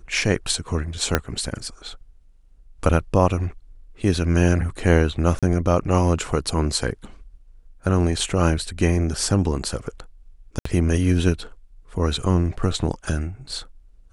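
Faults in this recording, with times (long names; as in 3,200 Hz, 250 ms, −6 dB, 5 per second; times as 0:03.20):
0:01.15: click −3 dBFS
0:05.39–0:05.43: drop-out 36 ms
0:10.59–0:10.65: drop-out 64 ms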